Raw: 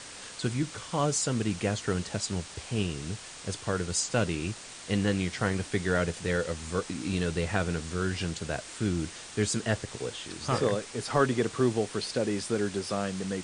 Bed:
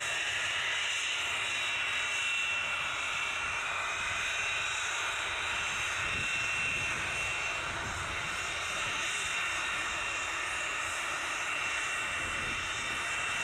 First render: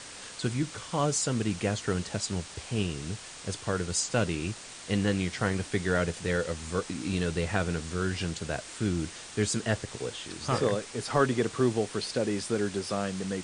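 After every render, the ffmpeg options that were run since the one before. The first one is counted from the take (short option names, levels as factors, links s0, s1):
-af anull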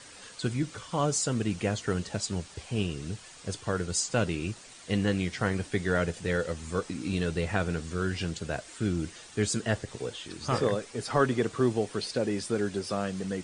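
-af "afftdn=nr=8:nf=-45"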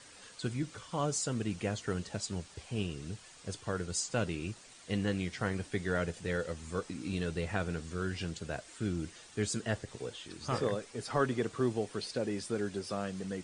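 -af "volume=0.531"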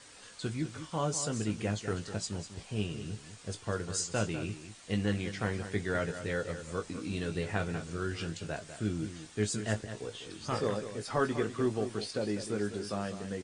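-filter_complex "[0:a]asplit=2[s0][s1];[s1]adelay=19,volume=0.422[s2];[s0][s2]amix=inputs=2:normalize=0,aecho=1:1:199:0.282"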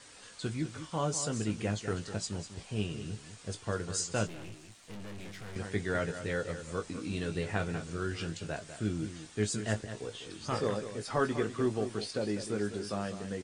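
-filter_complex "[0:a]asettb=1/sr,asplit=3[s0][s1][s2];[s0]atrim=end=4.274[s3];[s1]atrim=start=4.27:end=5.56,asetpts=PTS-STARTPTS,afade=t=in:d=0.004:c=qsin,afade=t=out:st=1.286:d=0.004:c=qsin,aeval=exprs='(tanh(141*val(0)+0.7)-tanh(0.7))/141':c=same[s4];[s2]atrim=start=5.556[s5];[s3][s4]acrossfade=d=0.004:c1=hsin:c2=qsin[s6];[s6][s5]acrossfade=d=0.004:c1=qsin:c2=hsin"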